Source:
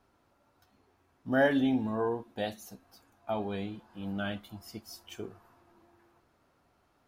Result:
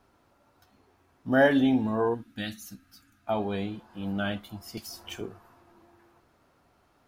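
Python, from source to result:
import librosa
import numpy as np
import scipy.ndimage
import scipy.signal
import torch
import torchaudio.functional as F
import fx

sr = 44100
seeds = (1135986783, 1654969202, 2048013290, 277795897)

y = fx.spec_box(x, sr, start_s=2.14, length_s=1.13, low_hz=330.0, high_hz=1200.0, gain_db=-16)
y = fx.band_squash(y, sr, depth_pct=100, at=(4.77, 5.21))
y = y * librosa.db_to_amplitude(4.5)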